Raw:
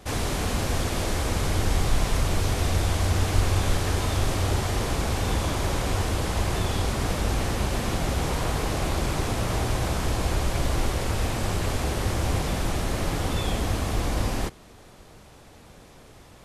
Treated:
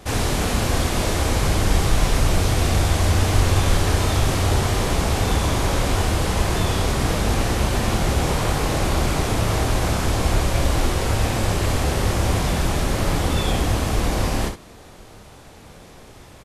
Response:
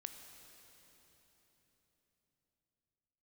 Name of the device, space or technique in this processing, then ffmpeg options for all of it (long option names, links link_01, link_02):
slapback doubling: -filter_complex "[0:a]asplit=3[link_01][link_02][link_03];[link_02]adelay=28,volume=-9dB[link_04];[link_03]adelay=65,volume=-8.5dB[link_05];[link_01][link_04][link_05]amix=inputs=3:normalize=0,volume=4.5dB"